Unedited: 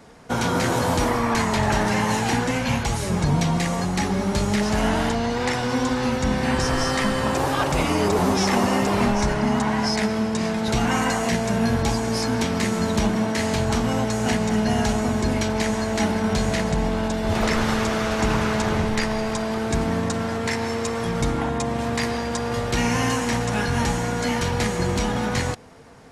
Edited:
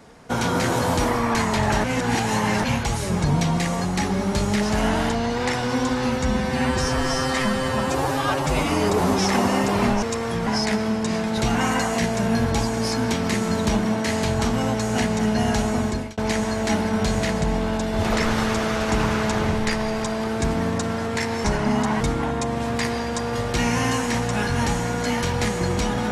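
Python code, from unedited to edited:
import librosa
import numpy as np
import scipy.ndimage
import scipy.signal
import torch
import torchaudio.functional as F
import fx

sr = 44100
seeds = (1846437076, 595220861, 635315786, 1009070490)

y = fx.edit(x, sr, fx.reverse_span(start_s=1.84, length_s=0.8),
    fx.stretch_span(start_s=6.23, length_s=1.63, factor=1.5),
    fx.swap(start_s=9.21, length_s=0.56, other_s=20.75, other_length_s=0.44),
    fx.fade_out_span(start_s=15.15, length_s=0.33), tone=tone)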